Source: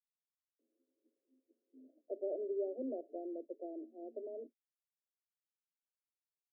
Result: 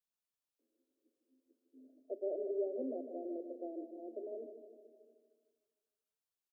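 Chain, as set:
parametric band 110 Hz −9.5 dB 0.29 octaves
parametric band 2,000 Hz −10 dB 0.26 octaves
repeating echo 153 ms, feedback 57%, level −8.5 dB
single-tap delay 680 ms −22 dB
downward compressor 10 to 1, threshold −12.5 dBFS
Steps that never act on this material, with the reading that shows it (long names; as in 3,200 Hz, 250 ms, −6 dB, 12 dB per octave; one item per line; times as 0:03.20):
parametric band 110 Hz: nothing at its input below 210 Hz
parametric band 2,000 Hz: nothing at its input above 760 Hz
downward compressor, threshold −12.5 dBFS: peak of its input −27.5 dBFS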